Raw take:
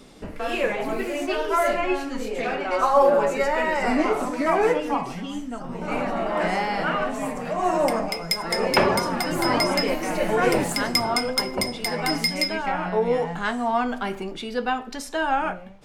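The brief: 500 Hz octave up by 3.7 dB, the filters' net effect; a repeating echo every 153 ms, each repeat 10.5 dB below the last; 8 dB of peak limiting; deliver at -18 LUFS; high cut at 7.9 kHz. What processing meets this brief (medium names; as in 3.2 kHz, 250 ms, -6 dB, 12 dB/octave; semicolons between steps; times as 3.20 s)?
low-pass 7.9 kHz; peaking EQ 500 Hz +4.5 dB; peak limiter -11.5 dBFS; feedback delay 153 ms, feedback 30%, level -10.5 dB; trim +4.5 dB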